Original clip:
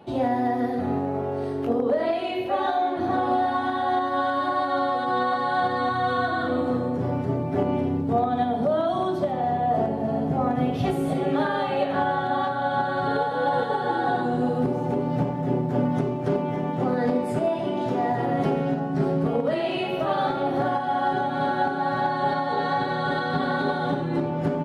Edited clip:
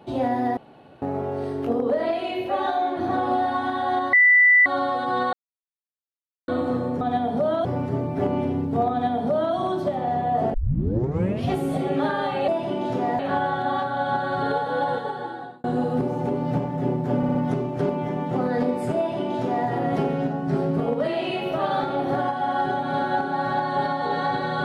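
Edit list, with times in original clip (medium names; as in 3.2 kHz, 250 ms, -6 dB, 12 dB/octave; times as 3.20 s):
0.57–1.02 s: room tone
4.13–4.66 s: bleep 1.98 kHz -11.5 dBFS
5.33–6.48 s: mute
8.27–8.91 s: copy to 7.01 s
9.90 s: tape start 0.96 s
13.40–14.29 s: fade out
15.82 s: stutter 0.06 s, 4 plays
17.44–18.15 s: copy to 11.84 s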